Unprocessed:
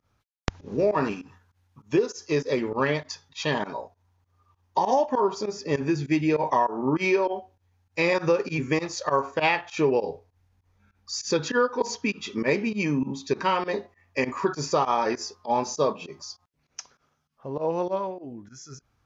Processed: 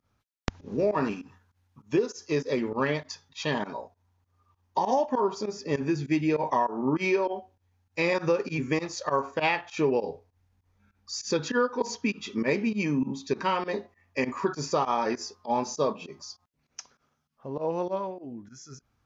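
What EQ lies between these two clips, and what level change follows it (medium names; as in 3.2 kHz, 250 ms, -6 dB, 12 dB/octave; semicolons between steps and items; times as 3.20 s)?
peaking EQ 230 Hz +4 dB 0.49 oct; -3.0 dB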